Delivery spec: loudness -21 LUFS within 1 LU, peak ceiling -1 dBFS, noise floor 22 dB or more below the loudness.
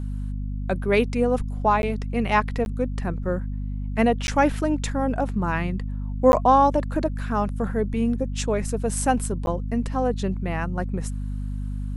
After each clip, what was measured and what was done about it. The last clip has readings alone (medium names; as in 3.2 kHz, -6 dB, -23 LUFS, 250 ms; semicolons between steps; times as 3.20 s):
dropouts 5; longest dropout 11 ms; hum 50 Hz; highest harmonic 250 Hz; hum level -26 dBFS; loudness -24.5 LUFS; peak level -5.0 dBFS; loudness target -21.0 LUFS
-> interpolate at 1.82/2.65/4.27/6.32/9.46 s, 11 ms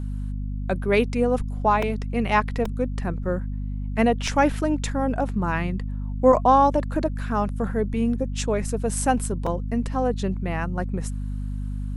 dropouts 0; hum 50 Hz; highest harmonic 250 Hz; hum level -26 dBFS
-> de-hum 50 Hz, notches 5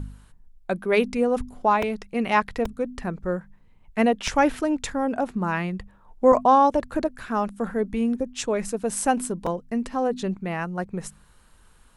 hum not found; loudness -24.5 LUFS; peak level -6.5 dBFS; loudness target -21.0 LUFS
-> trim +3.5 dB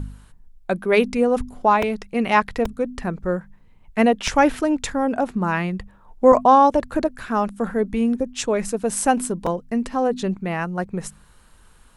loudness -21.0 LUFS; peak level -3.0 dBFS; noise floor -51 dBFS